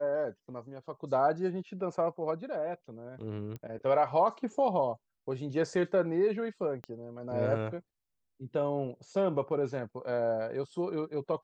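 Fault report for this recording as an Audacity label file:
3.560000	3.560000	pop -29 dBFS
6.840000	6.840000	pop -27 dBFS

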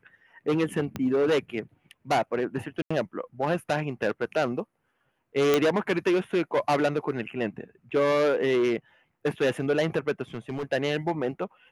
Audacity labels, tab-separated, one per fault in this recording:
0.960000	0.960000	pop -17 dBFS
2.820000	2.900000	dropout 85 ms
5.540000	5.540000	pop -8 dBFS
10.340000	10.640000	clipped -27.5 dBFS

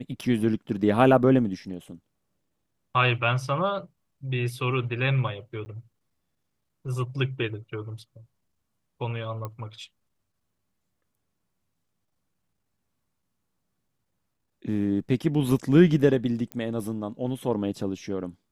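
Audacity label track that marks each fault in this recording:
5.650000	5.660000	dropout 10 ms
9.450000	9.450000	pop -21 dBFS
16.520000	16.520000	pop -19 dBFS

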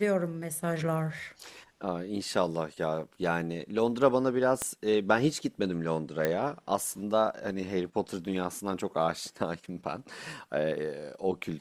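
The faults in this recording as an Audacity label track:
4.620000	4.620000	pop -16 dBFS
6.250000	6.250000	pop -14 dBFS

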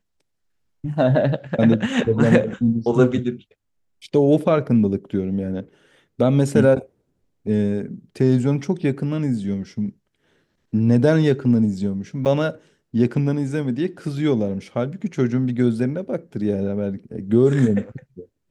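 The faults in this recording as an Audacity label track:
12.250000	12.260000	dropout 8.3 ms

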